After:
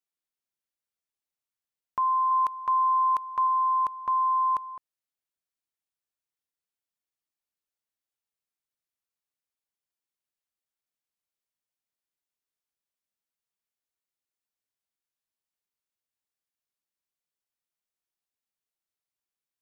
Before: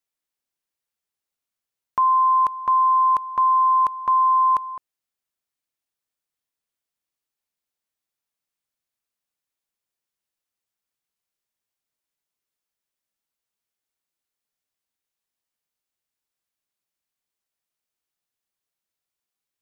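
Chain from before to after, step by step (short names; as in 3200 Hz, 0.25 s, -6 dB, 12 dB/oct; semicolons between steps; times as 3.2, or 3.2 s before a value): 2.31–3.47 tilt shelf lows -4.5 dB, about 780 Hz; gain -7 dB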